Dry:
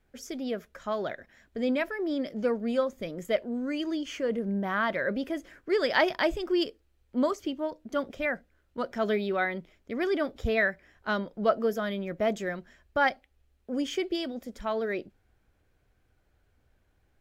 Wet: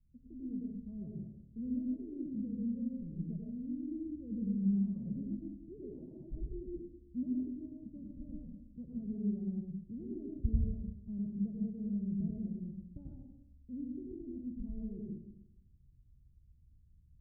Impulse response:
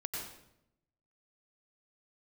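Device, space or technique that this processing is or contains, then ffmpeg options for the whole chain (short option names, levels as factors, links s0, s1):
club heard from the street: -filter_complex "[0:a]alimiter=limit=0.112:level=0:latency=1:release=359,lowpass=f=190:w=0.5412,lowpass=f=190:w=1.3066[s0];[1:a]atrim=start_sample=2205[s1];[s0][s1]afir=irnorm=-1:irlink=0,volume=1.5"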